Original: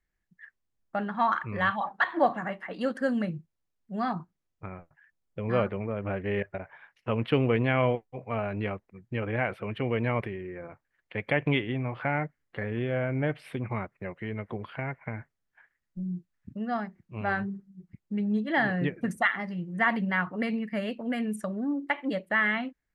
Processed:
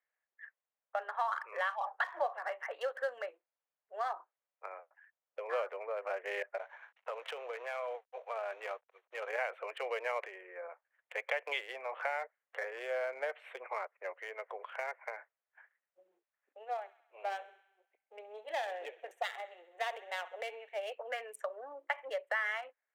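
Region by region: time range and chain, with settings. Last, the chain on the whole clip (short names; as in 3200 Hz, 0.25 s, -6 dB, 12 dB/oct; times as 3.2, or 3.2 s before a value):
6.57–9.29 CVSD 32 kbps + tone controls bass -14 dB, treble -7 dB + compressor 20:1, threshold -31 dBFS
16.55–20.92 half-wave gain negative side -7 dB + band shelf 1400 Hz -10 dB 1.2 oct + thin delay 66 ms, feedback 62%, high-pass 1600 Hz, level -14.5 dB
whole clip: Wiener smoothing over 9 samples; steep high-pass 490 Hz 48 dB/oct; compressor 3:1, threshold -33 dBFS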